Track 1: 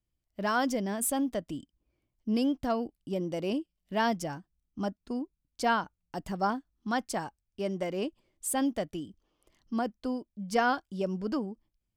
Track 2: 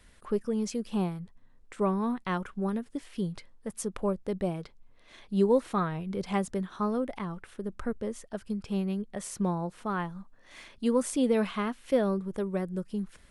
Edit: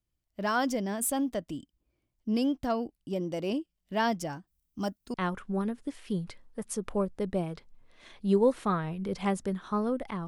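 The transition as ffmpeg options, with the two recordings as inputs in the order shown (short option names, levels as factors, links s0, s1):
-filter_complex "[0:a]asettb=1/sr,asplit=3[s0][s1][s2];[s0]atrim=end=4.474[s3];[s1]atrim=start=4.47:end=5.14,asetpts=PTS-STARTPTS,afade=t=in:d=0.004:c=qsin,afade=t=out:st=0.666:d=0.004:c=qsin,aemphasis=mode=production:type=50kf[s4];[s2]atrim=start=5.136[s5];[s3][s4]acrossfade=d=0.004:c1=hsin:c2=qsin[s6];[s6][s5]acrossfade=d=0.004:c1=qsin:c2=hsin,apad=whole_dur=10.27,atrim=end=10.27,atrim=end=5.142[s7];[1:a]atrim=start=2.218:end=7.35[s8];[s7][s8]acrossfade=d=0.004:c1=hsin:c2=hsin"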